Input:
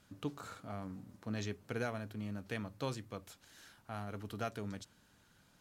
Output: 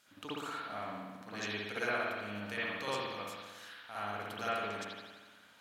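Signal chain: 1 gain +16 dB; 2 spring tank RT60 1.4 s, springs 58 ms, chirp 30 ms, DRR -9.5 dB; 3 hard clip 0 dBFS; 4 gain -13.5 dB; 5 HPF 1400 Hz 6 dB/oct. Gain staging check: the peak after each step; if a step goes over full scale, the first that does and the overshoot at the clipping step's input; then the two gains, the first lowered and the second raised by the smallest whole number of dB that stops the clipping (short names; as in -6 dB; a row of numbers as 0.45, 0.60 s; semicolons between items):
-8.5, -1.5, -1.5, -15.0, -21.0 dBFS; no overload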